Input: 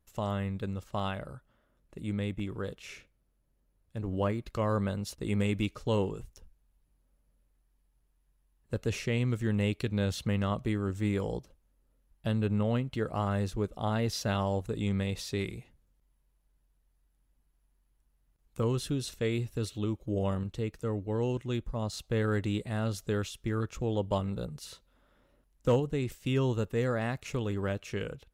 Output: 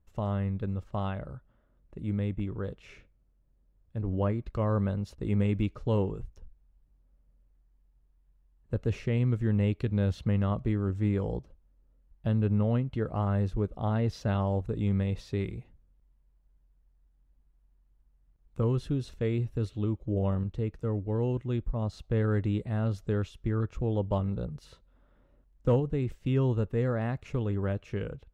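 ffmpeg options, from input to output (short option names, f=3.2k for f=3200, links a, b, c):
-af "lowpass=f=1.4k:p=1,lowshelf=f=120:g=7.5"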